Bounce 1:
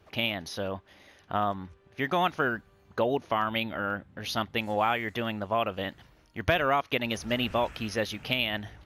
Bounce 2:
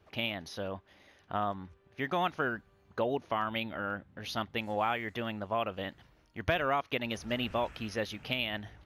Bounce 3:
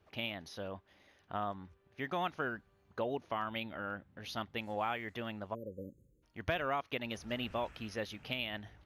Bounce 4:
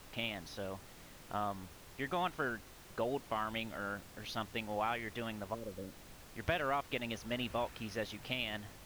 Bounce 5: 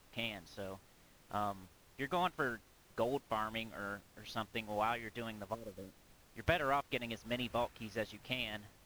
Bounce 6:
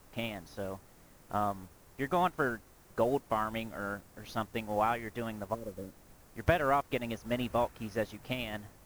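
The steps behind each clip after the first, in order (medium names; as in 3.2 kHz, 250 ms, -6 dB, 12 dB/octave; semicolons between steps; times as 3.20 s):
treble shelf 6.2 kHz -4.5 dB; trim -4.5 dB
spectral selection erased 5.54–6.23 s, 580–6400 Hz; trim -5 dB
added noise pink -55 dBFS
upward expansion 1.5:1, over -54 dBFS; trim +2.5 dB
peaking EQ 3.3 kHz -8.5 dB 1.6 oct; trim +7 dB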